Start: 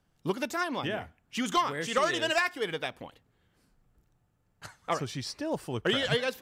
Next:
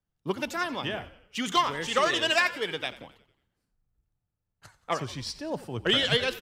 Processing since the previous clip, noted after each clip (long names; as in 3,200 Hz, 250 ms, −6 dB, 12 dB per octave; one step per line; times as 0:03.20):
dynamic equaliser 3,300 Hz, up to +5 dB, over −44 dBFS, Q 0.95
echo with shifted repeats 90 ms, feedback 58%, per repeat −54 Hz, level −16 dB
multiband upward and downward expander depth 40%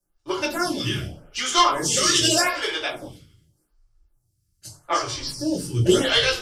flat-topped bell 7,400 Hz +13.5 dB
convolution reverb RT60 0.35 s, pre-delay 3 ms, DRR −7.5 dB
phaser with staggered stages 0.84 Hz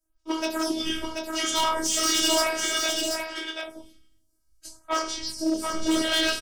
hard clipping −18 dBFS, distortion −10 dB
phases set to zero 319 Hz
single-tap delay 734 ms −4.5 dB